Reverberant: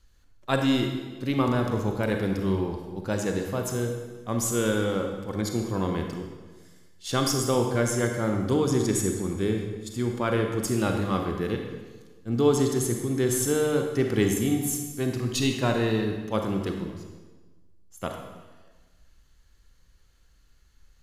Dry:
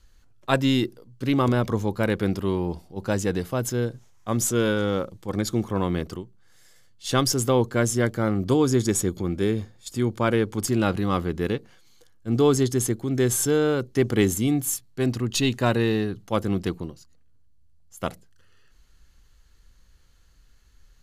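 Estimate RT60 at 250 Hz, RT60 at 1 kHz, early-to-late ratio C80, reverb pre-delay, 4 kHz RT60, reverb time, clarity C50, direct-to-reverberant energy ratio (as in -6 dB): 1.4 s, 1.3 s, 6.0 dB, 33 ms, 1.1 s, 1.4 s, 4.0 dB, 3.0 dB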